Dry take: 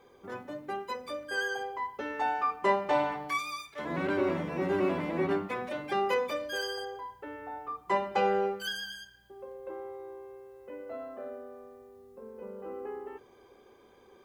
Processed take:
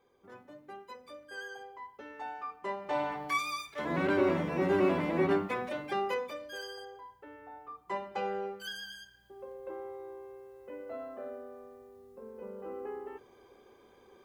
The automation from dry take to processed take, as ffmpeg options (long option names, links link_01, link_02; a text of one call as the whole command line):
ffmpeg -i in.wav -af "volume=8.5dB,afade=type=in:start_time=2.76:duration=0.68:silence=0.237137,afade=type=out:start_time=5.41:duration=0.93:silence=0.334965,afade=type=in:start_time=8.45:duration=0.99:silence=0.446684" out.wav